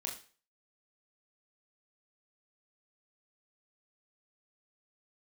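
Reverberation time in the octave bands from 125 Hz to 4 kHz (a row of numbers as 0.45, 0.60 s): 0.40, 0.40, 0.40, 0.40, 0.40, 0.40 s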